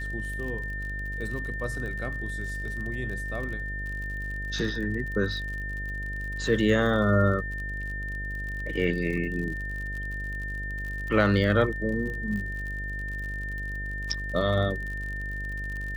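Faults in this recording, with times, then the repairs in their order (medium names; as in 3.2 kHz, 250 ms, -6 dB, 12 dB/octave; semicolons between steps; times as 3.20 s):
buzz 50 Hz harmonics 14 -35 dBFS
crackle 54 per s -35 dBFS
whine 1.8 kHz -34 dBFS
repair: de-click; de-hum 50 Hz, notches 14; band-stop 1.8 kHz, Q 30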